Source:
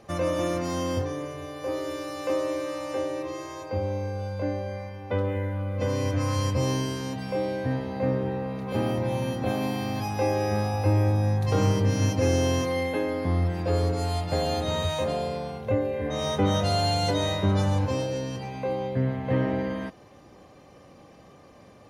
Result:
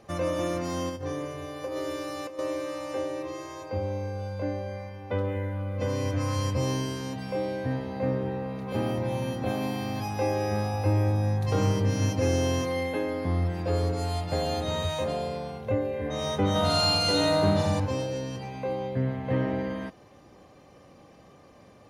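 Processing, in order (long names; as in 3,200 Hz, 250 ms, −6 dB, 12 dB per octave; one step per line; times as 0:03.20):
0:00.89–0:02.39: compressor whose output falls as the input rises −30 dBFS, ratio −0.5
0:16.51–0:17.80: flutter between parallel walls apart 7.7 metres, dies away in 1.4 s
level −2 dB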